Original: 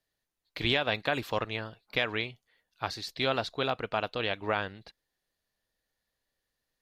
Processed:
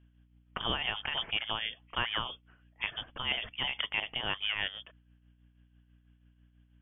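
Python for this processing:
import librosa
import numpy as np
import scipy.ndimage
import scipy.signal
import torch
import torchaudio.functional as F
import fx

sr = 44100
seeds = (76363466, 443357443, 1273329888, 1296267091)

p1 = scipy.signal.sosfilt(scipy.signal.butter(2, 110.0, 'highpass', fs=sr, output='sos'), x)
p2 = fx.over_compress(p1, sr, threshold_db=-38.0, ratio=-1.0)
p3 = p1 + (p2 * 10.0 ** (2.0 / 20.0))
p4 = fx.freq_invert(p3, sr, carrier_hz=3400)
p5 = fx.add_hum(p4, sr, base_hz=60, snr_db=25)
p6 = fx.tremolo_shape(p5, sr, shape='triangle', hz=6.1, depth_pct=60)
y = p6 * 10.0 ** (-3.5 / 20.0)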